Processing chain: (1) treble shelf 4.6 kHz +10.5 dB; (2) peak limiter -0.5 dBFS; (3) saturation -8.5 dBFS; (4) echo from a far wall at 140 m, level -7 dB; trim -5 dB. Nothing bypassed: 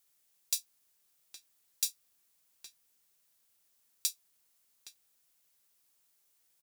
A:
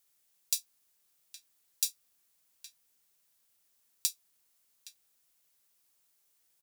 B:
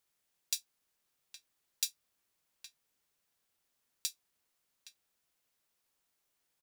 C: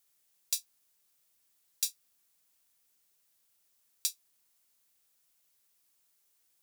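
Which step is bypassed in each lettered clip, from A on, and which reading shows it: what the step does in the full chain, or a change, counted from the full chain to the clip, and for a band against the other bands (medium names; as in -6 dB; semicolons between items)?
3, distortion -12 dB; 1, crest factor change +3.0 dB; 4, echo-to-direct -9.5 dB to none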